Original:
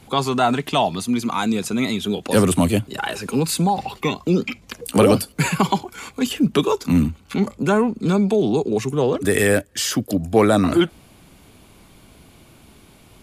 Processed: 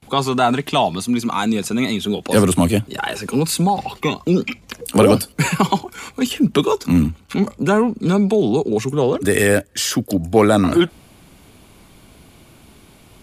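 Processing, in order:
noise gate with hold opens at −41 dBFS
level +2 dB

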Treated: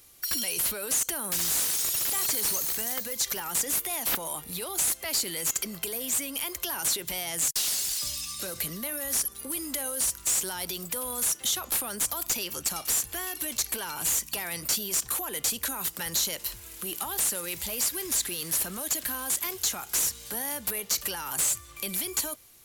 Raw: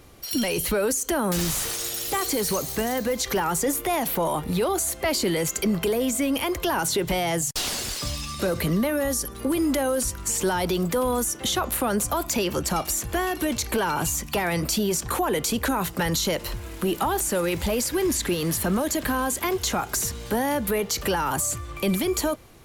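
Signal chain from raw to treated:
first-order pre-emphasis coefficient 0.9
slew-rate limiting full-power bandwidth 440 Hz
level +3 dB

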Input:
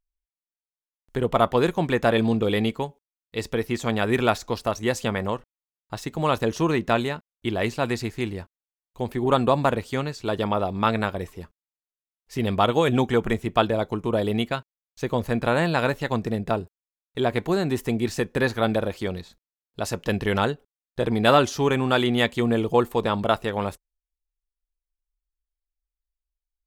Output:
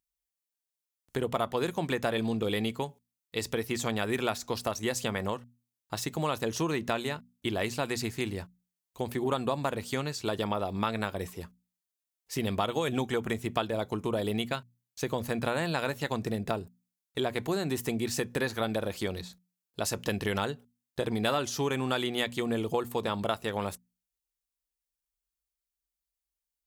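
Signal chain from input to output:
high-pass filter 62 Hz
high-shelf EQ 4,300 Hz +9.5 dB
mains-hum notches 60/120/180/240 Hz
downward compressor 3 to 1, threshold −26 dBFS, peak gain reduction 11.5 dB
level −2 dB

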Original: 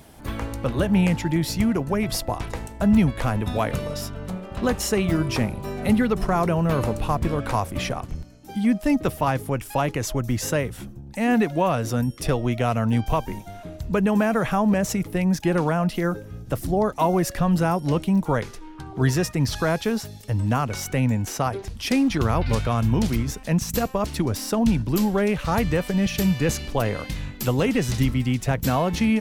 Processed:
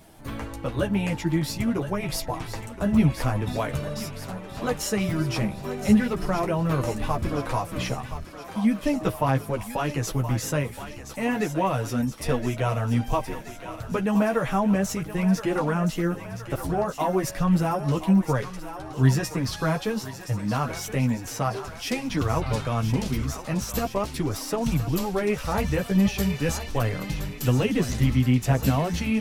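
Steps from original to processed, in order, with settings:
multi-voice chorus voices 4, 0.4 Hz, delay 11 ms, depth 4.8 ms
feedback echo with a high-pass in the loop 1,021 ms, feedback 65%, high-pass 560 Hz, level −10 dB

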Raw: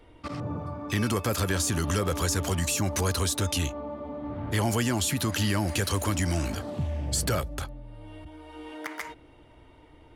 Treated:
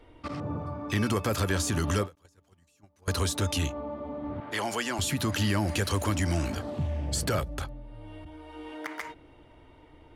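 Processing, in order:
high-shelf EQ 6,200 Hz −6 dB
mains-hum notches 60/120/180 Hz
0:02.15–0:03.08: noise gate −21 dBFS, range −37 dB
0:04.40–0:04.99: meter weighting curve A
every ending faded ahead of time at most 290 dB per second

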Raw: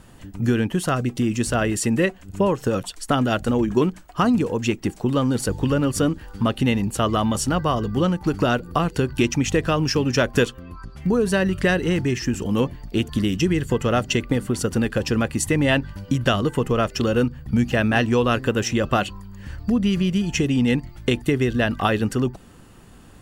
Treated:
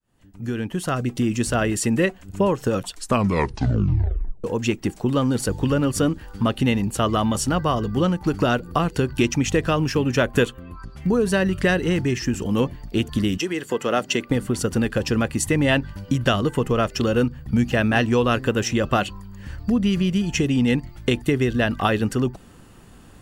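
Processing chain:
fade in at the beginning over 1.16 s
0:02.95: tape stop 1.49 s
0:09.84–0:10.80: parametric band 5,300 Hz −8 dB 0.5 octaves
0:13.37–0:14.29: high-pass filter 420 Hz → 190 Hz 12 dB per octave

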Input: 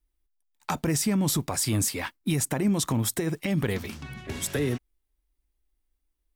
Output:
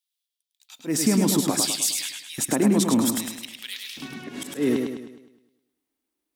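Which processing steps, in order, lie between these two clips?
volume swells 127 ms
auto-filter high-pass square 0.63 Hz 260–3,500 Hz
feedback echo with a swinging delay time 104 ms, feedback 48%, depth 56 cents, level −4.5 dB
level +2 dB

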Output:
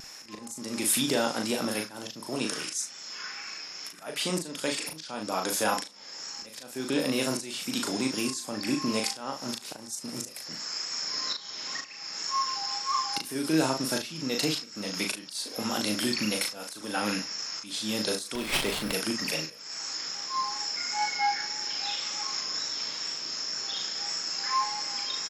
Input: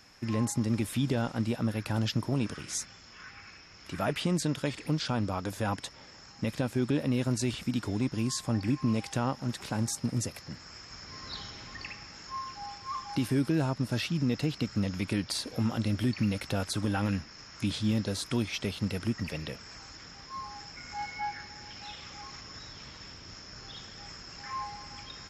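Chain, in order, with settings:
high-pass filter 150 Hz 24 dB per octave
bass and treble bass −13 dB, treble +11 dB
tape wow and flutter 28 cents
volume swells 405 ms
ambience of single reflections 38 ms −4 dB, 73 ms −17 dB
on a send at −20.5 dB: convolution reverb RT60 0.50 s, pre-delay 7 ms
0:18.35–0:18.93: on the sum: windowed peak hold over 5 samples
level +5.5 dB

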